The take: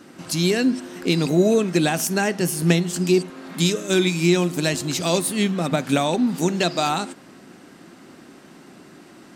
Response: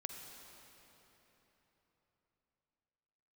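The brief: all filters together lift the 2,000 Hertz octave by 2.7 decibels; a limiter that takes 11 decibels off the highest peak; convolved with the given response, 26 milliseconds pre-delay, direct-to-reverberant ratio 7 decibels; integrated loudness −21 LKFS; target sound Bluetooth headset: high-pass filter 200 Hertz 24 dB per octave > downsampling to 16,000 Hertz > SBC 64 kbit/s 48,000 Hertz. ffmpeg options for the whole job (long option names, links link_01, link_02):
-filter_complex "[0:a]equalizer=frequency=2000:width_type=o:gain=3.5,alimiter=limit=-14.5dB:level=0:latency=1,asplit=2[link_01][link_02];[1:a]atrim=start_sample=2205,adelay=26[link_03];[link_02][link_03]afir=irnorm=-1:irlink=0,volume=-5dB[link_04];[link_01][link_04]amix=inputs=2:normalize=0,highpass=frequency=200:width=0.5412,highpass=frequency=200:width=1.3066,aresample=16000,aresample=44100,volume=4dB" -ar 48000 -c:a sbc -b:a 64k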